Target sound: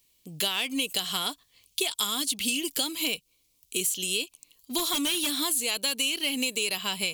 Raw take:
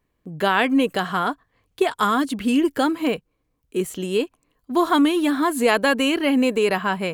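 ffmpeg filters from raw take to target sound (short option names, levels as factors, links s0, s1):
-filter_complex "[0:a]aexciter=amount=6.7:drive=9.9:freq=2500,asplit=3[s0][s1][s2];[s0]afade=t=out:st=4.77:d=0.02[s3];[s1]aeval=exprs='0.447*(abs(mod(val(0)/0.447+3,4)-2)-1)':c=same,afade=t=in:st=4.77:d=0.02,afade=t=out:st=5.34:d=0.02[s4];[s2]afade=t=in:st=5.34:d=0.02[s5];[s3][s4][s5]amix=inputs=3:normalize=0,acompressor=threshold=0.141:ratio=6,volume=0.398"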